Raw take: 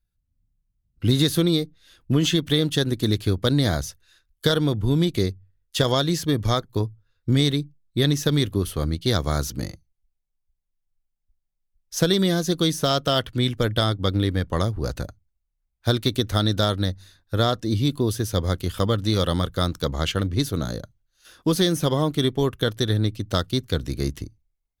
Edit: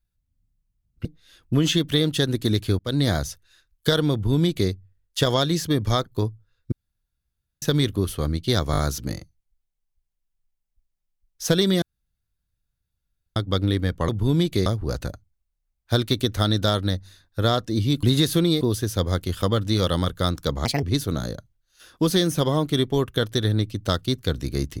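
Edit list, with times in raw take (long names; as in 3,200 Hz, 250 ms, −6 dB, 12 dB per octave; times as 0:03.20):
0:01.05–0:01.63: move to 0:17.98
0:03.37–0:03.68: fade in equal-power
0:04.71–0:05.28: duplicate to 0:14.61
0:07.30–0:08.20: fill with room tone
0:09.30: stutter 0.02 s, 4 plays
0:12.34–0:13.88: fill with room tone
0:20.02–0:20.28: play speed 146%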